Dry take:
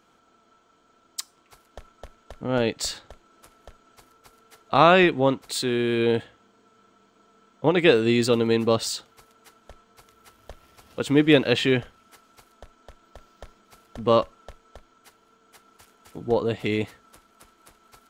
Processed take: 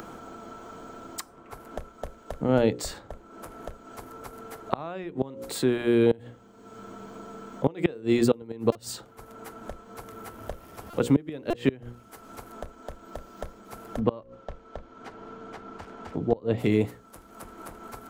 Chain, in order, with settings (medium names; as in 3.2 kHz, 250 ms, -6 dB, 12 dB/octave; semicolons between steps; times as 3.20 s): peaking EQ 3.5 kHz -11.5 dB 2.8 oct; hum notches 60/120/180/240/300/360/420/480/540 Hz; inverted gate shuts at -13 dBFS, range -25 dB; 14.00–16.58 s: distance through air 160 m; upward compressor, threshold -48 dBFS; buffer glitch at 8.72/10.90/11.50 s, samples 128, times 10; three bands compressed up and down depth 40%; trim +6 dB